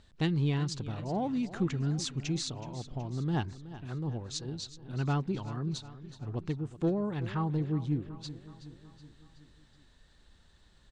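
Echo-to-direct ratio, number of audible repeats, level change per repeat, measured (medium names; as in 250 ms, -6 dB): -13.5 dB, 4, -5.0 dB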